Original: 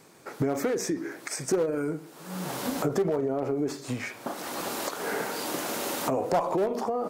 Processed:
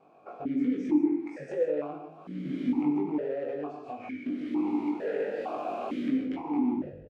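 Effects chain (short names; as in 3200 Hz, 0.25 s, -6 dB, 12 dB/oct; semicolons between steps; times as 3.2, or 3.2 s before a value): tape stop at the end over 0.68 s; tilt -4 dB/oct; compressor 16:1, threshold -22 dBFS, peak gain reduction 10.5 dB; wavefolder -21.5 dBFS; doubler 20 ms -3 dB; non-linear reverb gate 0.2 s flat, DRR 3 dB; vowel sequencer 2.2 Hz; gain +4 dB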